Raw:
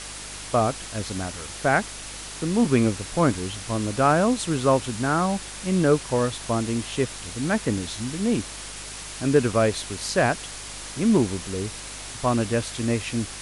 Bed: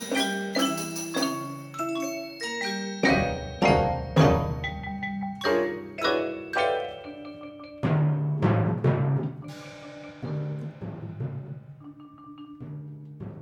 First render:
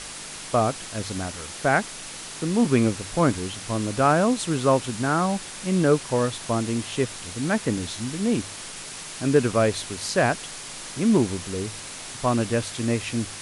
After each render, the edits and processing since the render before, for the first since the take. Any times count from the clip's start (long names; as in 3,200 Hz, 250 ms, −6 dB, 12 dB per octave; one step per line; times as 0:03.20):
hum removal 50 Hz, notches 2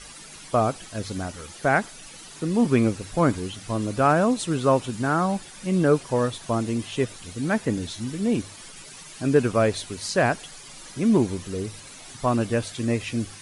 broadband denoise 11 dB, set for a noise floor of −38 dBFS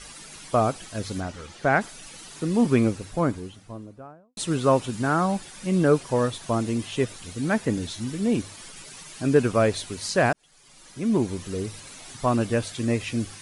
0:01.20–0:01.81: high-frequency loss of the air 73 metres
0:02.60–0:04.37: fade out and dull
0:10.33–0:11.52: fade in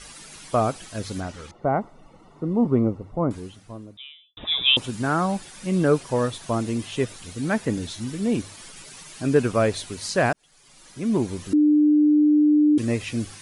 0:01.51–0:03.31: Savitzky-Golay smoothing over 65 samples
0:03.97–0:04.77: voice inversion scrambler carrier 3,700 Hz
0:11.53–0:12.78: beep over 299 Hz −13.5 dBFS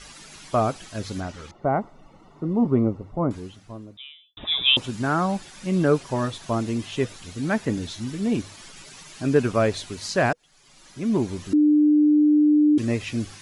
parametric band 9,300 Hz −9.5 dB 0.31 octaves
notch filter 490 Hz, Q 14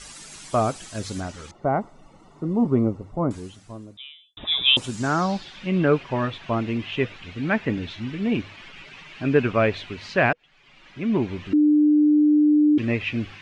low-pass filter sweep 9,000 Hz → 2,600 Hz, 0:04.90–0:05.72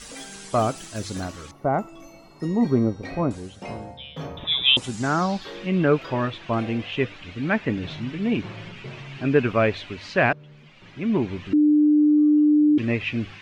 mix in bed −15.5 dB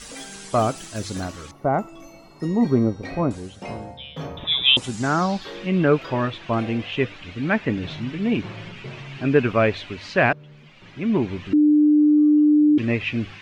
level +1.5 dB